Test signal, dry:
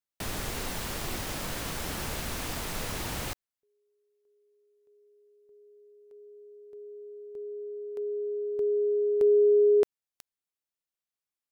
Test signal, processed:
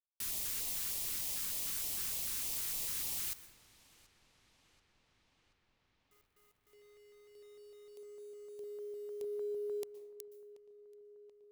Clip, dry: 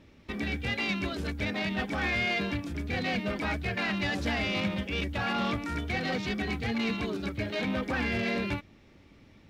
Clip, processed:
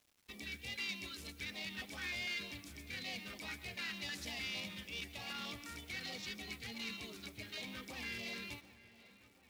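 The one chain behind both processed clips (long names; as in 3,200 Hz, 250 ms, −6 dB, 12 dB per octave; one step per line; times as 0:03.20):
first-order pre-emphasis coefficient 0.9
auto-filter notch square 3.3 Hz 670–1,500 Hz
bit reduction 11 bits
on a send: feedback echo with a low-pass in the loop 732 ms, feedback 75%, low-pass 4,200 Hz, level −19 dB
on the sum: dense smooth reverb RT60 1 s, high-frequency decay 0.45×, pre-delay 110 ms, DRR 14.5 dB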